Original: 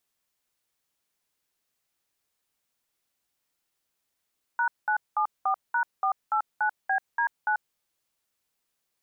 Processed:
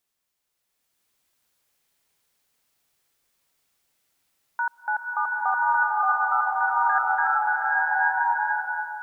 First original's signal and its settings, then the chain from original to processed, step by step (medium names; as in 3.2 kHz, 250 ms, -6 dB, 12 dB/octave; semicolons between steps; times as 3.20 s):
DTMF "#974#489BD9", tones 89 ms, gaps 199 ms, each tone -24.5 dBFS
swelling reverb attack 1050 ms, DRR -7 dB